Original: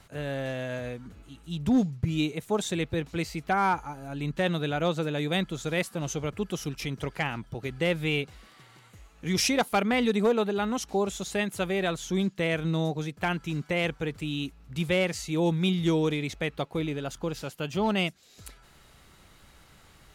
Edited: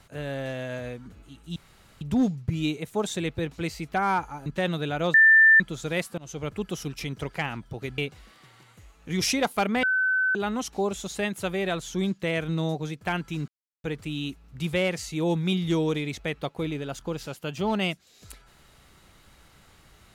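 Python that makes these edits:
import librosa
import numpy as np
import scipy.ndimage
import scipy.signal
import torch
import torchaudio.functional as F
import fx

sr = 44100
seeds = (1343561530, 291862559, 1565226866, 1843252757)

y = fx.edit(x, sr, fx.insert_room_tone(at_s=1.56, length_s=0.45),
    fx.cut(start_s=4.01, length_s=0.26),
    fx.bleep(start_s=4.95, length_s=0.46, hz=1780.0, db=-12.0),
    fx.fade_in_from(start_s=5.99, length_s=0.29, floor_db=-21.5),
    fx.cut(start_s=7.79, length_s=0.35),
    fx.bleep(start_s=9.99, length_s=0.52, hz=1520.0, db=-20.5),
    fx.silence(start_s=13.64, length_s=0.36), tone=tone)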